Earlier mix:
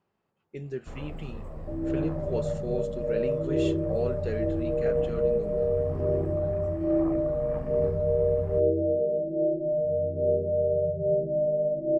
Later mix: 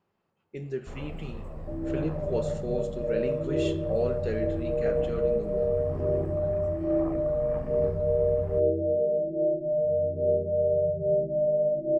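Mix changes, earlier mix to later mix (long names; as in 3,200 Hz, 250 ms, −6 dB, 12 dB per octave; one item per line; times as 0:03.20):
speech: send on
second sound: send −6.0 dB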